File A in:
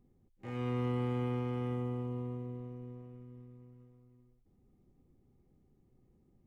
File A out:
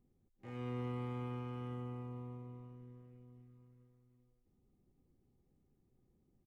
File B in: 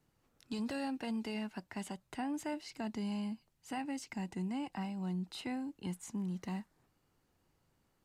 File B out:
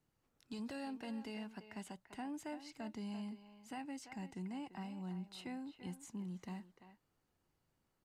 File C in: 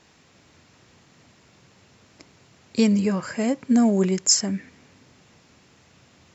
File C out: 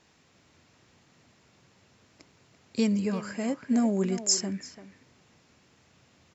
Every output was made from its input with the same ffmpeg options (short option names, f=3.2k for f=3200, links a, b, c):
-filter_complex "[0:a]asplit=2[a][b];[b]adelay=340,highpass=300,lowpass=3.4k,asoftclip=type=hard:threshold=-14.5dB,volume=-10dB[c];[a][c]amix=inputs=2:normalize=0,volume=-6.5dB"